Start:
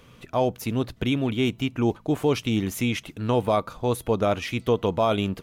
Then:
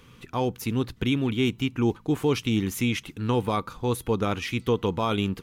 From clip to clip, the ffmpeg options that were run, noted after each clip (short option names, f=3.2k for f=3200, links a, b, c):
-af "equalizer=f=630:w=4:g=-13.5"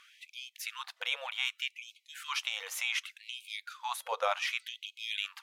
-af "highshelf=f=10k:g=-9.5,afftfilt=real='re*gte(b*sr/1024,470*pow(2200/470,0.5+0.5*sin(2*PI*0.66*pts/sr)))':imag='im*gte(b*sr/1024,470*pow(2200/470,0.5+0.5*sin(2*PI*0.66*pts/sr)))':win_size=1024:overlap=0.75"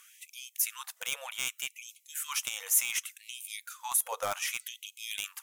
-af "aeval=exprs='clip(val(0),-1,0.0562)':c=same,aexciter=amount=7.3:drive=5.9:freq=6.2k,volume=-2dB"